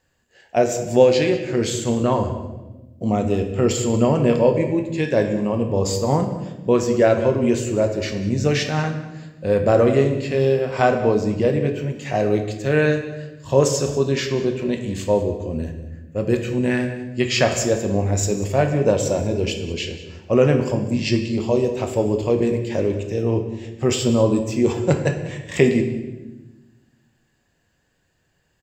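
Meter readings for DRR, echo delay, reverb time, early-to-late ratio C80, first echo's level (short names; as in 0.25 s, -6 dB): 4.0 dB, 0.191 s, 1.1 s, 9.5 dB, -17.5 dB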